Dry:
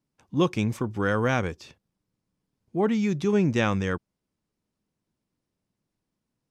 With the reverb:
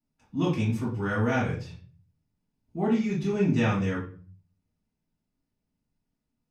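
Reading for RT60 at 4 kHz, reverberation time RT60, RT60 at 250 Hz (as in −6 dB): 0.35 s, 0.40 s, 0.70 s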